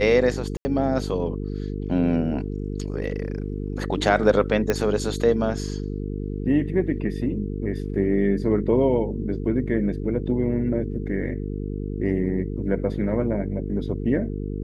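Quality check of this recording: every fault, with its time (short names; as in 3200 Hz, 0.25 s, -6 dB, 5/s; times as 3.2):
buzz 50 Hz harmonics 9 -29 dBFS
0.57–0.65 gap 80 ms
4.7 pop -9 dBFS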